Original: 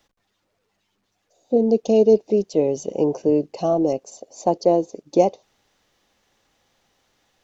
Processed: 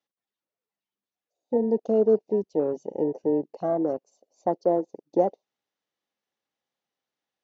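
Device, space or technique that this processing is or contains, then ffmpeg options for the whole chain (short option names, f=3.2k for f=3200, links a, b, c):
over-cleaned archive recording: -af "highpass=160,lowpass=6.6k,afwtdn=0.0501,volume=-5.5dB"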